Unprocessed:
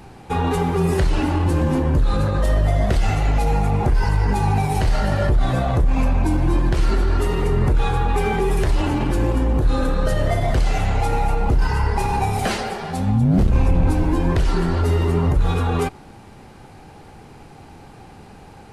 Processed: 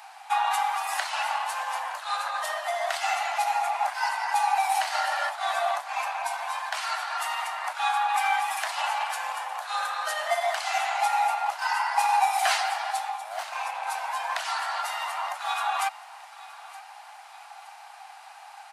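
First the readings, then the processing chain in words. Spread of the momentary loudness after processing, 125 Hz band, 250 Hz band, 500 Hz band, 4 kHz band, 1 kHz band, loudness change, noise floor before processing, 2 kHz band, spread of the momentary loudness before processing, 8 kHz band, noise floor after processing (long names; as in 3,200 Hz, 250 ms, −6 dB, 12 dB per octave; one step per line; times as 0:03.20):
20 LU, below −40 dB, below −40 dB, −12.0 dB, +1.5 dB, +1.5 dB, −7.0 dB, −43 dBFS, +1.5 dB, 3 LU, +1.5 dB, −47 dBFS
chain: Butterworth high-pass 680 Hz 72 dB per octave
repeating echo 920 ms, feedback 46%, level −19 dB
level +1.5 dB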